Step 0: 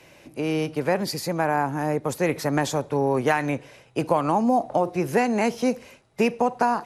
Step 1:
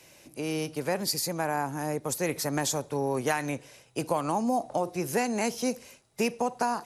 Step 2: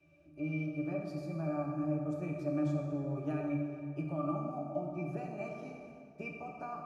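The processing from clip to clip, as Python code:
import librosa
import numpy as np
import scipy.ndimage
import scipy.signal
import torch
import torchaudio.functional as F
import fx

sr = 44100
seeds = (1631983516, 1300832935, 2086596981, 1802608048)

y1 = fx.bass_treble(x, sr, bass_db=0, treble_db=12)
y1 = F.gain(torch.from_numpy(y1), -6.5).numpy()
y2 = fx.octave_resonator(y1, sr, note='D', decay_s=0.12)
y2 = fx.rev_plate(y2, sr, seeds[0], rt60_s=2.3, hf_ratio=0.65, predelay_ms=0, drr_db=0.0)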